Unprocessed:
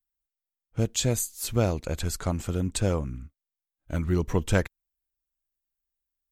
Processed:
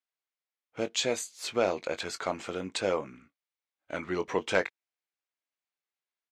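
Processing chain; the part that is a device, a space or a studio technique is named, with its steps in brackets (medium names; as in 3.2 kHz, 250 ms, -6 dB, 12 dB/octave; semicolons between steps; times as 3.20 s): intercom (band-pass 450–4400 Hz; peaking EQ 2.2 kHz +4.5 dB 0.24 oct; saturation -14 dBFS, distortion -21 dB; doubling 21 ms -11 dB); trim +3 dB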